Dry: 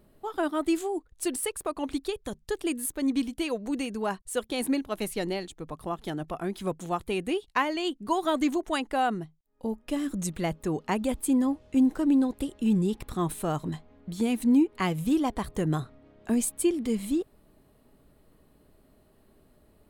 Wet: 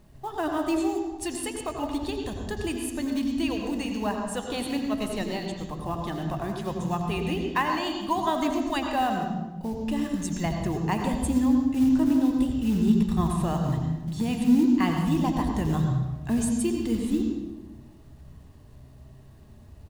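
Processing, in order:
low-pass filter 8,700 Hz 12 dB per octave
parametric band 75 Hz +4 dB 0.79 octaves
comb filter 1.1 ms, depth 42%
hum removal 89.09 Hz, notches 3
in parallel at −2 dB: downward compressor 6 to 1, threshold −39 dBFS, peak gain reduction 19 dB
on the sum: log-companded quantiser 6 bits
flanger 0.58 Hz, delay 5.9 ms, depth 7.3 ms, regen +79%
on a send at −3 dB: convolution reverb RT60 1.1 s, pre-delay 76 ms
on the sum: level +2 dB

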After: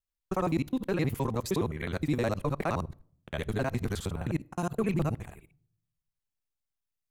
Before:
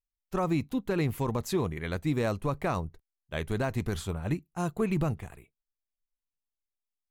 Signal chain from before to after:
reversed piece by piece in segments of 52 ms
on a send: convolution reverb RT60 0.60 s, pre-delay 4 ms, DRR 24 dB

